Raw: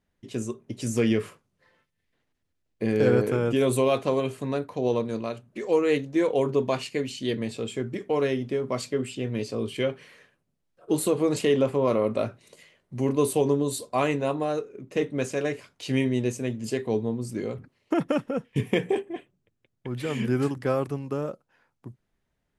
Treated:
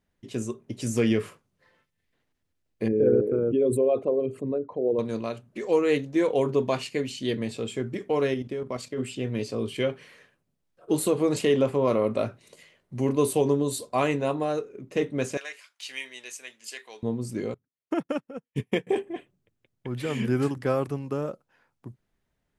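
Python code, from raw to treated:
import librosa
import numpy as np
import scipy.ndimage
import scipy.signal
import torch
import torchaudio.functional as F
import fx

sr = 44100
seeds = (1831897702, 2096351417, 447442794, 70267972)

y = fx.envelope_sharpen(x, sr, power=2.0, at=(2.88, 4.99))
y = fx.level_steps(y, sr, step_db=10, at=(8.34, 8.98))
y = fx.highpass(y, sr, hz=1500.0, slope=12, at=(15.37, 17.03))
y = fx.upward_expand(y, sr, threshold_db=-42.0, expansion=2.5, at=(17.54, 18.87))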